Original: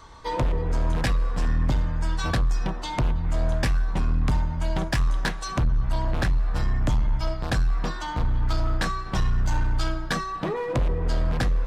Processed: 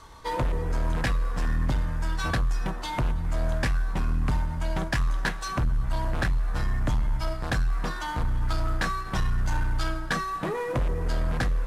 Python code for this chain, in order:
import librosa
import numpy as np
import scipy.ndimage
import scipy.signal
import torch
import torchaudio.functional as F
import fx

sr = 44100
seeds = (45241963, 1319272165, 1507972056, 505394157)

p1 = fx.cvsd(x, sr, bps=64000)
p2 = 10.0 ** (-29.5 / 20.0) * np.tanh(p1 / 10.0 ** (-29.5 / 20.0))
p3 = p1 + (p2 * 10.0 ** (-10.5 / 20.0))
p4 = fx.dynamic_eq(p3, sr, hz=1600.0, q=1.2, threshold_db=-45.0, ratio=4.0, max_db=4)
y = p4 * 10.0 ** (-3.5 / 20.0)